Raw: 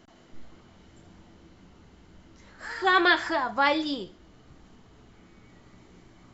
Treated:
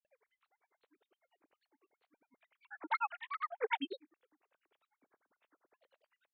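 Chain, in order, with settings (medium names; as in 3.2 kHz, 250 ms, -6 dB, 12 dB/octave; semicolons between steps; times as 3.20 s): formants replaced by sine waves; granulator 74 ms, grains 10 per s, pitch spread up and down by 7 st; trim -8.5 dB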